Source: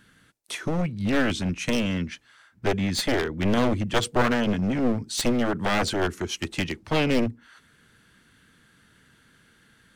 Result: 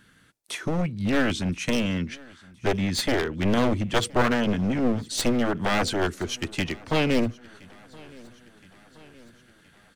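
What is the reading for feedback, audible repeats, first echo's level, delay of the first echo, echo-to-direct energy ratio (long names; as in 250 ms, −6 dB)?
59%, 3, −24.0 dB, 1,020 ms, −22.0 dB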